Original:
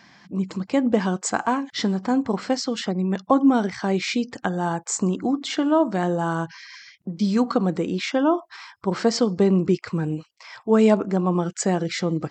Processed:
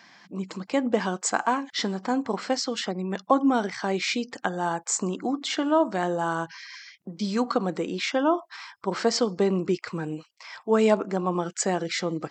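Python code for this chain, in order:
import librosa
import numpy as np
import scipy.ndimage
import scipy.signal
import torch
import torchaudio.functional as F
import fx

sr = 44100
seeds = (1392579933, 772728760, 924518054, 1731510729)

y = fx.highpass(x, sr, hz=420.0, slope=6)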